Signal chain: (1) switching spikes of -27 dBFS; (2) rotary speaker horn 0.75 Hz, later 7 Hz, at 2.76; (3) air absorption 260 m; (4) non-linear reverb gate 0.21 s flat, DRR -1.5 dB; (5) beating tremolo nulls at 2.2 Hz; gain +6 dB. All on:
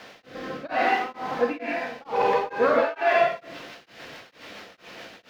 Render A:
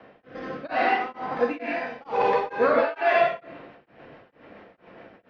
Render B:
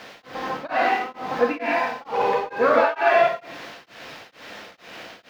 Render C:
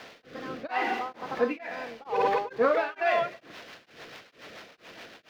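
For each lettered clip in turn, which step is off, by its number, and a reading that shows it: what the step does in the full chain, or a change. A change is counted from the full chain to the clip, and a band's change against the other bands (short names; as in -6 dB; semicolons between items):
1, distortion -10 dB; 2, crest factor change +2.0 dB; 4, loudness change -4.5 LU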